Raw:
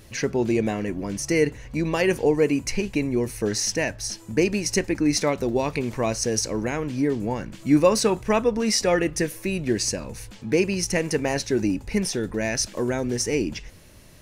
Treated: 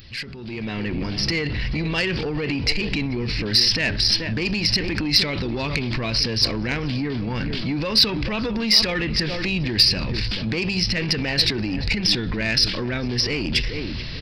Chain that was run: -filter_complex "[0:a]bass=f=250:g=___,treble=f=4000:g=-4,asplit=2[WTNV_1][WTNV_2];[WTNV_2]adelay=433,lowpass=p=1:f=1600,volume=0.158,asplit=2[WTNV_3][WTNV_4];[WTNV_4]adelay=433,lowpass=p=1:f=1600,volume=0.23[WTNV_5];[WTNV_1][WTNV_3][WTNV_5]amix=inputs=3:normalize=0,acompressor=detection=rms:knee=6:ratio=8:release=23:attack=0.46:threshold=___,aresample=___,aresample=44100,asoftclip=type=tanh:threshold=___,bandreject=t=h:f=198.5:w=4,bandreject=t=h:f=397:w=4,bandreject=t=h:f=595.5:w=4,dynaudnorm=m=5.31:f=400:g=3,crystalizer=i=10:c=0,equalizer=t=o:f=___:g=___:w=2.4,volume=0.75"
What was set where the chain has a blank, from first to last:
7, 0.0282, 11025, 0.0422, 710, -5.5